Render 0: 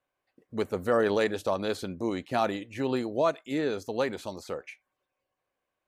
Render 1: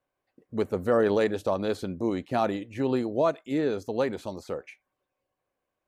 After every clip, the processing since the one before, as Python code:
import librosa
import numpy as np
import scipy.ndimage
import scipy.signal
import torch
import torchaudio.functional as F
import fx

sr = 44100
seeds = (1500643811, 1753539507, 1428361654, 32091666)

y = fx.tilt_shelf(x, sr, db=3.5, hz=970.0)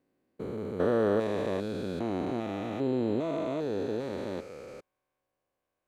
y = fx.spec_steps(x, sr, hold_ms=400)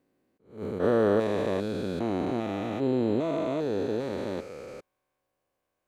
y = fx.attack_slew(x, sr, db_per_s=160.0)
y = y * librosa.db_to_amplitude(3.0)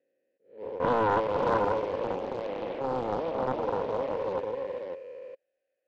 y = fx.vowel_filter(x, sr, vowel='e')
y = y + 10.0 ** (-3.5 / 20.0) * np.pad(y, (int(544 * sr / 1000.0), 0))[:len(y)]
y = fx.doppler_dist(y, sr, depth_ms=0.7)
y = y * librosa.db_to_amplitude(6.5)